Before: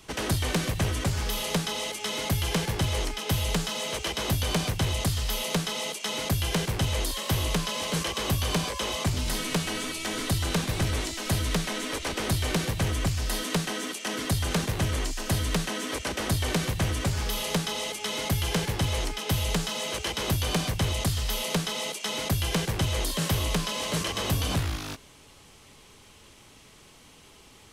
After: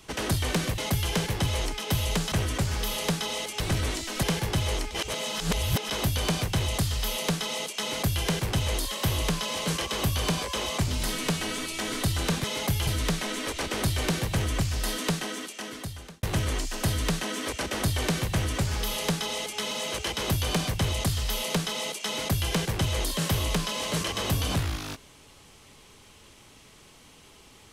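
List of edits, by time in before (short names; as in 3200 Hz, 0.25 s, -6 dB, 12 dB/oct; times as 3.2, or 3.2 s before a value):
2.06–2.49 swap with 10.7–11.33
3.17–4.16 reverse
13.54–14.69 fade out
18.17–19.71 move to 0.78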